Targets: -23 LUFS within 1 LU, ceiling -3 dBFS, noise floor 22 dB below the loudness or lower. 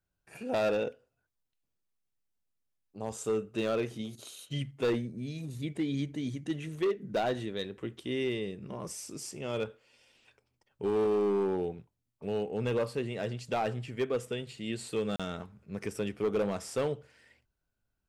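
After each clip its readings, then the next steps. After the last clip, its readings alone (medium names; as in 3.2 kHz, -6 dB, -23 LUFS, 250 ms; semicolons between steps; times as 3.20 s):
clipped samples 1.2%; clipping level -24.0 dBFS; dropouts 1; longest dropout 36 ms; loudness -34.0 LUFS; peak level -24.0 dBFS; loudness target -23.0 LUFS
-> clip repair -24 dBFS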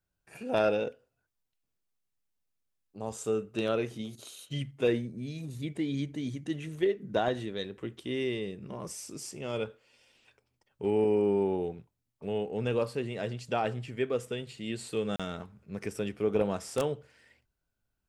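clipped samples 0.0%; dropouts 1; longest dropout 36 ms
-> interpolate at 15.16 s, 36 ms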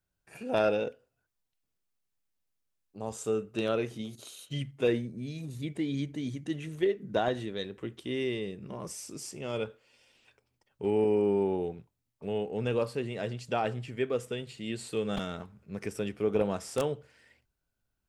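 dropouts 0; loudness -32.5 LUFS; peak level -15.0 dBFS; loudness target -23.0 LUFS
-> trim +9.5 dB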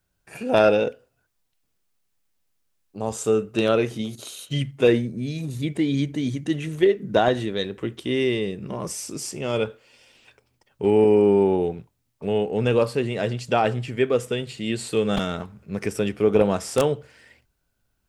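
loudness -23.5 LUFS; peak level -5.5 dBFS; noise floor -73 dBFS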